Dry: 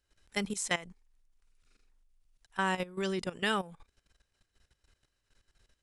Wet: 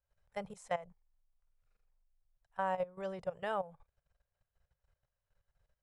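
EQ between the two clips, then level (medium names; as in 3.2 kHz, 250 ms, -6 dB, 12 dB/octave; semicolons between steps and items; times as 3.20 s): bass shelf 220 Hz -10.5 dB; dynamic bell 640 Hz, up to +7 dB, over -47 dBFS, Q 0.98; FFT filter 150 Hz 0 dB, 300 Hz -26 dB, 550 Hz -4 dB, 4 kHz -24 dB; +3.0 dB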